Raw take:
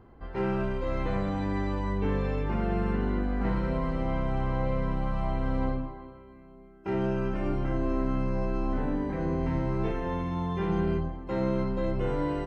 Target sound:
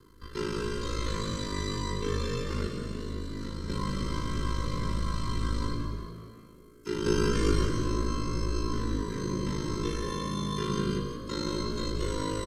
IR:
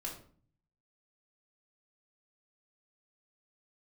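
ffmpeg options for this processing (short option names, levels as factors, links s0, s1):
-filter_complex "[0:a]acrossover=split=110|590[s0][s1][s2];[s2]aexciter=amount=9.2:drive=6.8:freq=3700[s3];[s0][s1][s3]amix=inputs=3:normalize=0,asuperstop=centerf=690:order=12:qfactor=1.5,asettb=1/sr,asplit=3[s4][s5][s6];[s4]atrim=end=2.674[s7];[s5]atrim=start=2.67:end=3.69,asetpts=PTS-STARTPTS,afade=t=in:d=0.004:c=qsin,afade=t=out:st=1.016:d=0.004:c=qsin,acrossover=split=96|520|2900[s8][s9][s10][s11];[s8]acompressor=threshold=0.0178:ratio=4[s12];[s9]acompressor=threshold=0.02:ratio=4[s13];[s10]acompressor=threshold=0.00282:ratio=4[s14];[s11]acompressor=threshold=0.00282:ratio=4[s15];[s12][s13][s14][s15]amix=inputs=4:normalize=0[s16];[s6]atrim=start=3.686[s17];[s7][s16]acrossfade=d=0.004:c1=hsin:c2=qsin[s18];[s18][s17]acrossfade=d=0.004:c1=qsin:c2=hsin,aresample=32000,aresample=44100,asettb=1/sr,asplit=3[s19][s20][s21];[s19]atrim=end=7.064[s22];[s20]atrim=start=7.06:end=7.65,asetpts=PTS-STARTPTS,afade=t=in:d=0.004:c=qsin,afade=t=out:st=0.586:d=0.004:c=qsin,acontrast=69[s23];[s21]atrim=start=7.646[s24];[s22][s23]acrossfade=d=0.004:c1=hsin:c2=qsin[s25];[s25][s24]acrossfade=d=0.004:c1=qsin:c2=hsin,asplit=2[s26][s27];[1:a]atrim=start_sample=2205[s28];[s27][s28]afir=irnorm=-1:irlink=0,volume=0.473[s29];[s26][s29]amix=inputs=2:normalize=0,aeval=exprs='val(0)*sin(2*PI*26*n/s)':c=same,lowshelf=f=330:g=-4,asplit=6[s30][s31][s32][s33][s34][s35];[s31]adelay=180,afreqshift=54,volume=0.376[s36];[s32]adelay=360,afreqshift=108,volume=0.158[s37];[s33]adelay=540,afreqshift=162,volume=0.0661[s38];[s34]adelay=720,afreqshift=216,volume=0.0279[s39];[s35]adelay=900,afreqshift=270,volume=0.0117[s40];[s30][s36][s37][s38][s39][s40]amix=inputs=6:normalize=0"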